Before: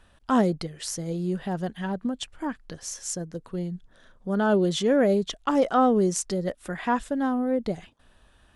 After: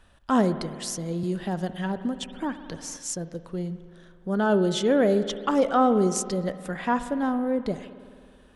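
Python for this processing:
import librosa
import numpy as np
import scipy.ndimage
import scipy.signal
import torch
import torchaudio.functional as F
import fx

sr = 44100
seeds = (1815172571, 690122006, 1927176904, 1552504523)

y = fx.rev_spring(x, sr, rt60_s=2.2, pass_ms=(53,), chirp_ms=80, drr_db=11.5)
y = fx.band_squash(y, sr, depth_pct=40, at=(1.23, 2.97))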